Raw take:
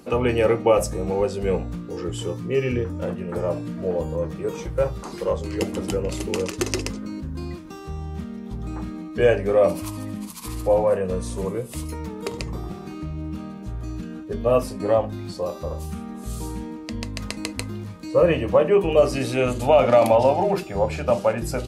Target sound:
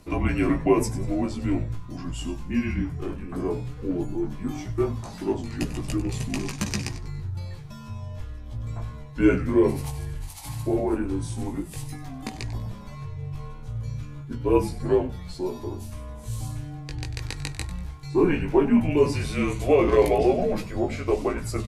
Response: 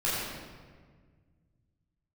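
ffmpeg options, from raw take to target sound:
-filter_complex "[0:a]flanger=delay=15.5:depth=4.5:speed=0.14,asplit=4[s0][s1][s2][s3];[s1]adelay=96,afreqshift=-130,volume=0.2[s4];[s2]adelay=192,afreqshift=-260,volume=0.0661[s5];[s3]adelay=288,afreqshift=-390,volume=0.0216[s6];[s0][s4][s5][s6]amix=inputs=4:normalize=0,afreqshift=-170"

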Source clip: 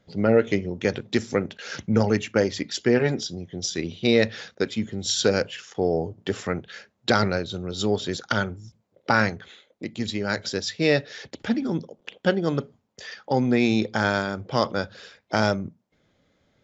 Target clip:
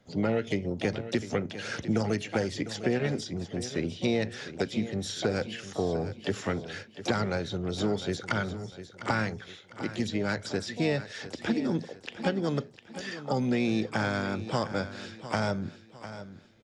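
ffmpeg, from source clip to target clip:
-filter_complex "[0:a]asplit=2[s0][s1];[s1]asetrate=66075,aresample=44100,atempo=0.66742,volume=0.224[s2];[s0][s2]amix=inputs=2:normalize=0,acrossover=split=200|2400[s3][s4][s5];[s3]acompressor=threshold=0.0251:ratio=4[s6];[s4]acompressor=threshold=0.0398:ratio=4[s7];[s5]acompressor=threshold=0.00891:ratio=4[s8];[s6][s7][s8]amix=inputs=3:normalize=0,aecho=1:1:703|1406|2109|2812:0.224|0.0828|0.0306|0.0113"

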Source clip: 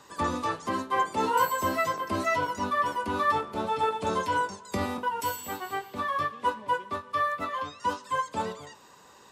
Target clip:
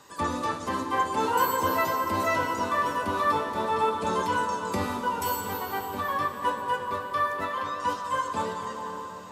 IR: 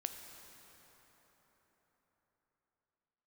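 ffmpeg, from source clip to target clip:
-filter_complex "[0:a]highshelf=f=12000:g=6.5[s0];[1:a]atrim=start_sample=2205,asetrate=29106,aresample=44100[s1];[s0][s1]afir=irnorm=-1:irlink=0"

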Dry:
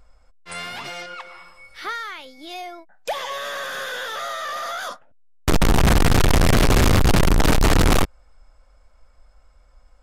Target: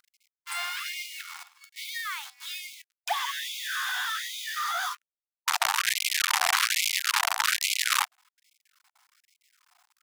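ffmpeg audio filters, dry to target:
-af "acrusher=bits=7:dc=4:mix=0:aa=0.000001,afftfilt=real='re*gte(b*sr/1024,670*pow(2100/670,0.5+0.5*sin(2*PI*1.2*pts/sr)))':imag='im*gte(b*sr/1024,670*pow(2100/670,0.5+0.5*sin(2*PI*1.2*pts/sr)))':win_size=1024:overlap=0.75"

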